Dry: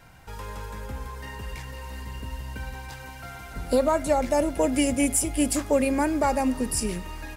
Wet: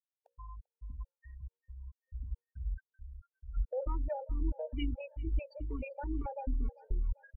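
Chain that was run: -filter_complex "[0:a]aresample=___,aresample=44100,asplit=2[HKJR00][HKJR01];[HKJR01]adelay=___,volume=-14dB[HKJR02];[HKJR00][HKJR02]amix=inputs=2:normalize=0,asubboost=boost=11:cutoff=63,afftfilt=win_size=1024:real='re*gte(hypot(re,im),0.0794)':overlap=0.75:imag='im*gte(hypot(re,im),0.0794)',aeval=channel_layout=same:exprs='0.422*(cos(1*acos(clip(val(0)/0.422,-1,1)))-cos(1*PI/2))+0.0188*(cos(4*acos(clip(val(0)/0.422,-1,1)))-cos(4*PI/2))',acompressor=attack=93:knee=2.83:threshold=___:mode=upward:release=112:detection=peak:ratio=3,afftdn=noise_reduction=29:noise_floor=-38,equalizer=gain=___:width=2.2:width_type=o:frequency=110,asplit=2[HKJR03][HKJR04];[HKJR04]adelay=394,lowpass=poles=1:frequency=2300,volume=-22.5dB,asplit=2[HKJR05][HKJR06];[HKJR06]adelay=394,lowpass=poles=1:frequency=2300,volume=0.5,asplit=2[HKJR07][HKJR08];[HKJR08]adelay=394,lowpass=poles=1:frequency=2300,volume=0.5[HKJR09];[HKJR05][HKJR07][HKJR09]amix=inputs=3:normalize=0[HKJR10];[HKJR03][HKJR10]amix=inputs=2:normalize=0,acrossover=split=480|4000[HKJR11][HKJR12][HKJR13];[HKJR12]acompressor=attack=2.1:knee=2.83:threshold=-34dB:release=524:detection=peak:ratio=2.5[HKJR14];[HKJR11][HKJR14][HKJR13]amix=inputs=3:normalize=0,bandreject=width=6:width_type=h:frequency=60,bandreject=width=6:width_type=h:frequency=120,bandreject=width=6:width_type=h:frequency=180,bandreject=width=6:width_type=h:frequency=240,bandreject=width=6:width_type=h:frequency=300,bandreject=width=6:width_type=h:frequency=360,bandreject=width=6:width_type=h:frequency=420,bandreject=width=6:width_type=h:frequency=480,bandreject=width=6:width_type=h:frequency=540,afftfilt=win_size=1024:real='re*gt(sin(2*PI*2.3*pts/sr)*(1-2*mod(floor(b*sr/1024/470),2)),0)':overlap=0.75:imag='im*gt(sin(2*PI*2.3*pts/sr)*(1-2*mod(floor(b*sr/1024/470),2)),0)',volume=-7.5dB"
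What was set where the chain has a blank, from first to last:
11025, 25, -36dB, -7.5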